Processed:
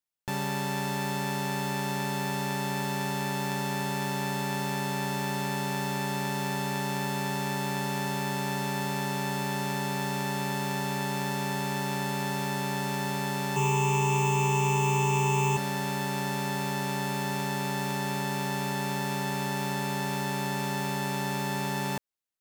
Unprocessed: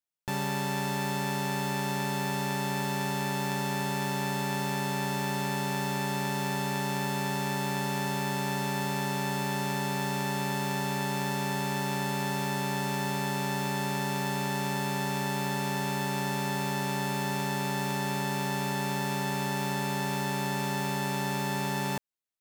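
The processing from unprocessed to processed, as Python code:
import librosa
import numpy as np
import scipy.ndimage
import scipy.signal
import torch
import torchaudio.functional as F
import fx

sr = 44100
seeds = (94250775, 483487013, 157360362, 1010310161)

y = fx.ripple_eq(x, sr, per_octave=0.71, db=18, at=(13.56, 15.57))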